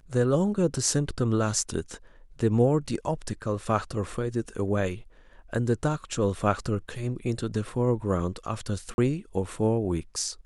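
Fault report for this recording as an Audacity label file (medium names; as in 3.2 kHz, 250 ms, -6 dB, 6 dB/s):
8.940000	8.980000	dropout 41 ms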